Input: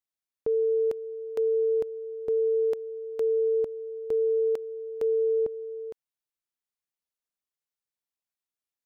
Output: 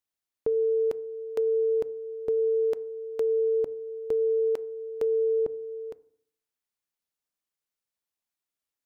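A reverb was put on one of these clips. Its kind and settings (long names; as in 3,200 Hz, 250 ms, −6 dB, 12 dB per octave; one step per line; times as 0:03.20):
feedback delay network reverb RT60 0.61 s, low-frequency decay 1.3×, high-frequency decay 0.3×, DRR 18 dB
level +2 dB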